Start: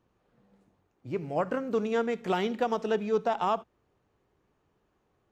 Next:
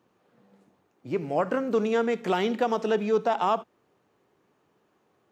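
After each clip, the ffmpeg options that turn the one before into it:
ffmpeg -i in.wav -filter_complex "[0:a]highpass=170,asplit=2[link_01][link_02];[link_02]alimiter=level_in=1dB:limit=-24dB:level=0:latency=1:release=21,volume=-1dB,volume=-0.5dB[link_03];[link_01][link_03]amix=inputs=2:normalize=0" out.wav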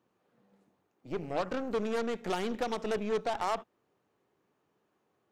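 ffmpeg -i in.wav -af "aeval=exprs='0.237*(cos(1*acos(clip(val(0)/0.237,-1,1)))-cos(1*PI/2))+0.0376*(cos(6*acos(clip(val(0)/0.237,-1,1)))-cos(6*PI/2))+0.0473*(cos(8*acos(clip(val(0)/0.237,-1,1)))-cos(8*PI/2))':channel_layout=same,volume=-7.5dB" out.wav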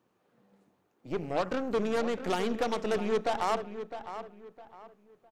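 ffmpeg -i in.wav -filter_complex "[0:a]asplit=2[link_01][link_02];[link_02]adelay=658,lowpass=frequency=2900:poles=1,volume=-10.5dB,asplit=2[link_03][link_04];[link_04]adelay=658,lowpass=frequency=2900:poles=1,volume=0.31,asplit=2[link_05][link_06];[link_06]adelay=658,lowpass=frequency=2900:poles=1,volume=0.31[link_07];[link_01][link_03][link_05][link_07]amix=inputs=4:normalize=0,volume=2.5dB" out.wav

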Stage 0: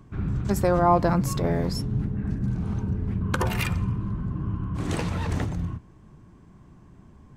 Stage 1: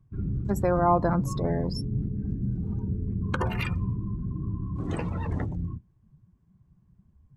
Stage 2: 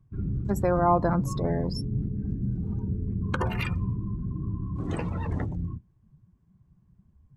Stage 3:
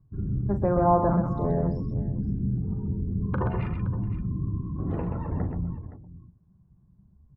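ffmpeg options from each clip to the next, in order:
ffmpeg -i in.wav -af "afftdn=noise_reduction=20:noise_floor=-35,volume=-2.5dB" out.wav
ffmpeg -i in.wav -af anull out.wav
ffmpeg -i in.wav -filter_complex "[0:a]lowpass=1100,asplit=2[link_01][link_02];[link_02]aecho=0:1:40|128|519:0.335|0.473|0.178[link_03];[link_01][link_03]amix=inputs=2:normalize=0" out.wav

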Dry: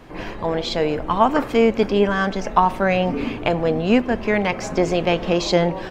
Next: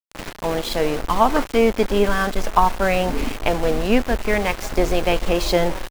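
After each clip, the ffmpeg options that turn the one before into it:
ffmpeg -i in.wav -af "aeval=exprs='val(0)*gte(abs(val(0)),0.0531)':channel_layout=same,asubboost=boost=8.5:cutoff=52" out.wav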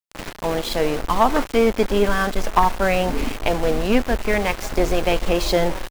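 ffmpeg -i in.wav -af "aeval=exprs='clip(val(0),-1,0.335)':channel_layout=same" out.wav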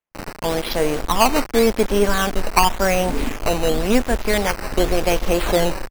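ffmpeg -i in.wav -af "acrusher=samples=9:mix=1:aa=0.000001:lfo=1:lforange=9:lforate=0.91,volume=1dB" out.wav

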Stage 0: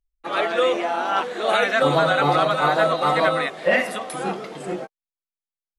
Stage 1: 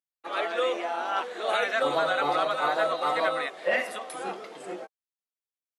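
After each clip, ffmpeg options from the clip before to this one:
ffmpeg -i in.wav -af "highpass=340,volume=-6.5dB" out.wav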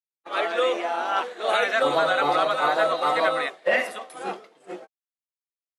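ffmpeg -i in.wav -af "agate=range=-33dB:threshold=-31dB:ratio=3:detection=peak,volume=4dB" out.wav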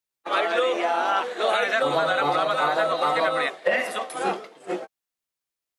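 ffmpeg -i in.wav -filter_complex "[0:a]acrossover=split=140[link_01][link_02];[link_02]acompressor=threshold=-28dB:ratio=5[link_03];[link_01][link_03]amix=inputs=2:normalize=0,volume=8dB" out.wav

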